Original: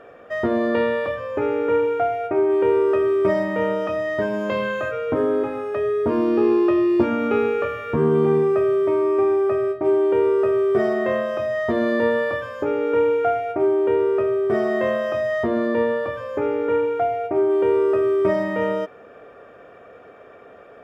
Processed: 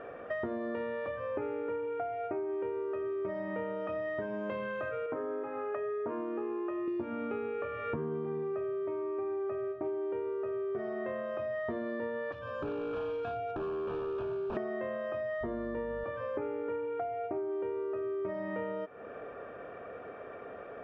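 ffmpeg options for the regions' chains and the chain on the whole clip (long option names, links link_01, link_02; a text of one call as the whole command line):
ffmpeg -i in.wav -filter_complex "[0:a]asettb=1/sr,asplit=3[link_01][link_02][link_03];[link_01]atrim=end=5.064[link_04];[link_02]atrim=start=5.06:end=6.88,asetpts=PTS-STARTPTS,afade=type=in:duration=0.004:curve=qsin,afade=type=out:start_time=1.816:duration=0.004:curve=qsin,highpass=100,lowpass=2100,lowshelf=frequency=390:gain=-12[link_05];[link_03]atrim=start=6.876[link_06];[link_04][link_05]acrossfade=duration=0.004:curve1=hsin:curve2=qsin[link_07];[link_07][link_06]acrossfade=duration=0.004:curve1=qsin:curve2=hsin,asettb=1/sr,asplit=3[link_08][link_09][link_10];[link_08]atrim=end=12.324[link_11];[link_09]atrim=start=12.32:end=14.57,asetpts=PTS-STARTPTS,afade=type=in:duration=0.004:curve=qsin,afade=type=out:start_time=2.246:duration=0.004:curve=qsin,acrossover=split=220|3000[link_12][link_13][link_14];[link_13]acompressor=threshold=-33dB:ratio=4:attack=3.2:release=140:knee=2.83:detection=peak[link_15];[link_12][link_15][link_14]amix=inputs=3:normalize=0,aeval=exprs='0.0422*(abs(mod(val(0)/0.0422+3,4)-2)-1)':channel_layout=same,asuperstop=centerf=2000:order=4:qfactor=3.2[link_16];[link_10]atrim=start=14.566[link_17];[link_11][link_16]acrossfade=duration=0.004:curve1=hsin:curve2=qsin[link_18];[link_18][link_17]acrossfade=duration=0.004:curve1=qsin:curve2=hsin,asettb=1/sr,asplit=3[link_19][link_20][link_21];[link_19]atrim=end=15.414[link_22];[link_20]atrim=start=15.41:end=16.04,asetpts=PTS-STARTPTS,afade=type=in:duration=0.004:curve=qsin,afade=type=out:start_time=0.626:duration=0.004:curve=qsin,bandreject=frequency=2500:width=9.9,aeval=exprs='val(0)+0.0224*(sin(2*PI*50*n/s)+sin(2*PI*2*50*n/s)/2+sin(2*PI*3*50*n/s)/3+sin(2*PI*4*50*n/s)/4+sin(2*PI*5*50*n/s)/5)':channel_layout=same[link_23];[link_21]atrim=start=16.036[link_24];[link_22][link_23]acrossfade=duration=0.004:curve1=hsin:curve2=qsin[link_25];[link_25][link_24]acrossfade=duration=0.004:curve1=qsin:curve2=hsin,lowpass=2600,acompressor=threshold=-33dB:ratio=12" out.wav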